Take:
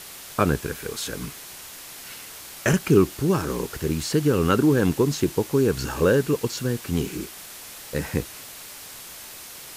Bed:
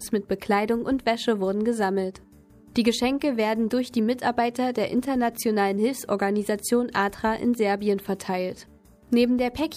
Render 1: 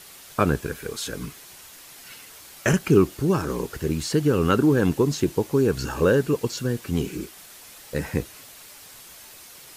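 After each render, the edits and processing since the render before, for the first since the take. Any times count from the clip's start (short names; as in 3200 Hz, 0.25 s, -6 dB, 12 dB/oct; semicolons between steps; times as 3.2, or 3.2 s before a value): denoiser 6 dB, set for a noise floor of -41 dBFS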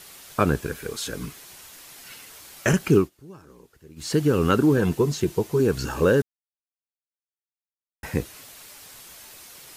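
2.95–4.11 dip -22.5 dB, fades 0.15 s; 4.77–5.6 notch comb 280 Hz; 6.22–8.03 mute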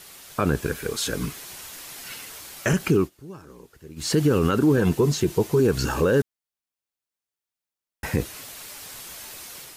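AGC gain up to 5.5 dB; limiter -11 dBFS, peak gain reduction 8 dB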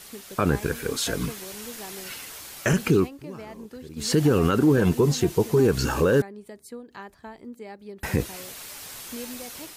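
add bed -17.5 dB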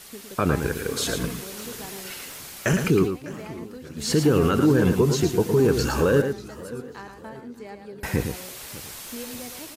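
echo 0.11 s -7 dB; warbling echo 0.597 s, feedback 44%, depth 165 cents, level -18.5 dB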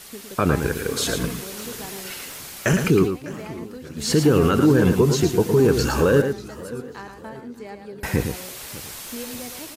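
gain +2.5 dB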